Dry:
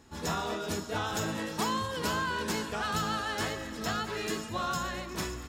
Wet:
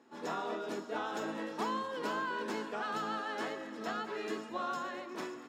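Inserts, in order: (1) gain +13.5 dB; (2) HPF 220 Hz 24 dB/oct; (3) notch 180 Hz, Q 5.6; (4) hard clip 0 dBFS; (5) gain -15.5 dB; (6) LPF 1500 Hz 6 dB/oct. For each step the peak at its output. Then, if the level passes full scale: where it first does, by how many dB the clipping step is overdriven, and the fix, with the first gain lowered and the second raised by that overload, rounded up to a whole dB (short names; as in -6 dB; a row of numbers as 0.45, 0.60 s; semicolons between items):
-5.5, -4.5, -4.5, -4.5, -20.0, -22.5 dBFS; no overload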